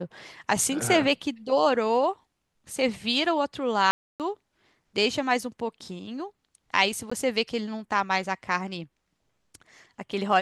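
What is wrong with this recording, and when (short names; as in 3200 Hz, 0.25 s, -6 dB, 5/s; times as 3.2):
3.91–4.2 gap 0.288 s
7.1–7.12 gap 15 ms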